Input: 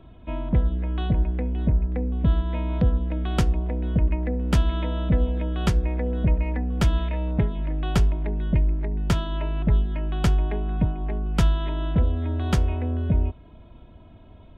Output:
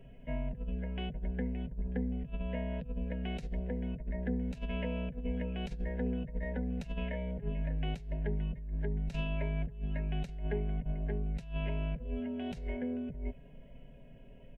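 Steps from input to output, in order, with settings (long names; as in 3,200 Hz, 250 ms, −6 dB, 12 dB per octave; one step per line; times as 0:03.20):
comb filter 7.3 ms, depth 42%
compressor whose output falls as the input rises −25 dBFS, ratio −0.5
phaser with its sweep stopped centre 320 Hz, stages 6
formants moved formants −3 semitones
level −4 dB
Nellymoser 88 kbit/s 44,100 Hz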